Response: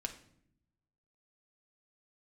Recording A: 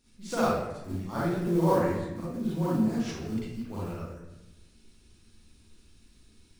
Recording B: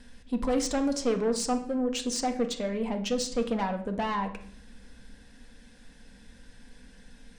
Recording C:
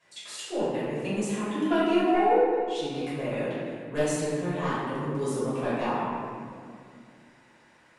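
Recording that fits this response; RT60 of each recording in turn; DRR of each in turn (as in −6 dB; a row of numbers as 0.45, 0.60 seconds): B; 1.0, 0.70, 2.2 seconds; −9.5, 4.0, −11.5 decibels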